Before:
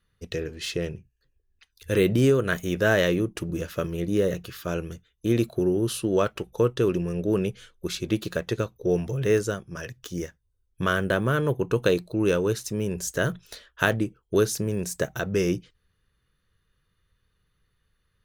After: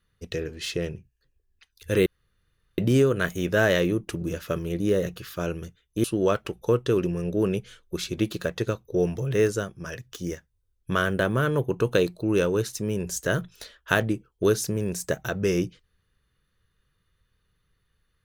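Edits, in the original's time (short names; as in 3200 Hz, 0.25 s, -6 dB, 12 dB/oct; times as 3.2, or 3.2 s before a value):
2.06 insert room tone 0.72 s
5.32–5.95 cut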